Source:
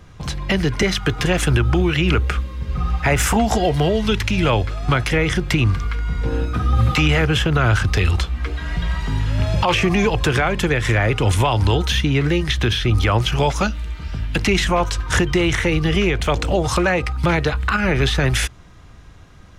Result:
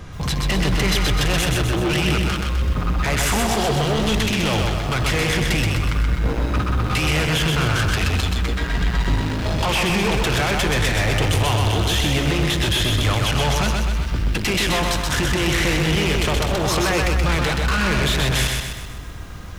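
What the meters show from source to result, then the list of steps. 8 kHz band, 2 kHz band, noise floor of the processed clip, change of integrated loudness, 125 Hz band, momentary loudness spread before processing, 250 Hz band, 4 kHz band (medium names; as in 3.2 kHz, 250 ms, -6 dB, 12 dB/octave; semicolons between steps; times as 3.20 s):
+3.0 dB, -0.5 dB, -30 dBFS, -1.0 dB, -2.0 dB, 7 LU, -2.0 dB, +2.5 dB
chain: dynamic bell 3.5 kHz, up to +5 dB, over -35 dBFS, Q 1.1; in parallel at +1 dB: compressor with a negative ratio -20 dBFS; on the sum: saturation -19.5 dBFS, distortion -7 dB; resampled via 32 kHz; bit-crushed delay 127 ms, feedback 55%, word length 8-bit, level -3 dB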